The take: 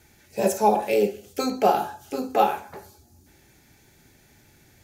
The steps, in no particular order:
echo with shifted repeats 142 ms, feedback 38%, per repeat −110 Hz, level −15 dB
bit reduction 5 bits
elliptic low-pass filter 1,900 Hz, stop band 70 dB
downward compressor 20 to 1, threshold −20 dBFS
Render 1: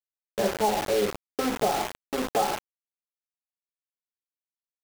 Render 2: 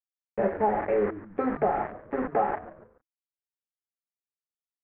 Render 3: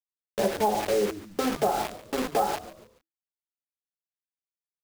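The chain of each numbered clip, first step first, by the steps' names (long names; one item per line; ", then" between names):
downward compressor, then elliptic low-pass filter, then echo with shifted repeats, then bit reduction
downward compressor, then bit reduction, then elliptic low-pass filter, then echo with shifted repeats
elliptic low-pass filter, then bit reduction, then downward compressor, then echo with shifted repeats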